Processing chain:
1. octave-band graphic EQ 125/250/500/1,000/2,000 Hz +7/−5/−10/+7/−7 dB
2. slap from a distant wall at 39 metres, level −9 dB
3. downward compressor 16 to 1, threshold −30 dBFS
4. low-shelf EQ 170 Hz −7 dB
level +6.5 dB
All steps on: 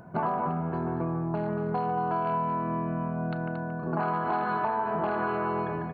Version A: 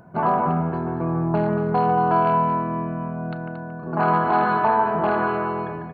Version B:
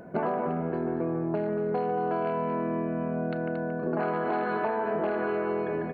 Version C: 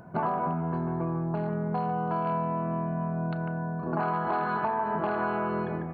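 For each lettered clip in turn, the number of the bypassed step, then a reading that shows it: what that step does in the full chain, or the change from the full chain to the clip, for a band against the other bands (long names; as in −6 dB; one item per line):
3, average gain reduction 5.5 dB
1, 500 Hz band +6.0 dB
2, 125 Hz band +1.5 dB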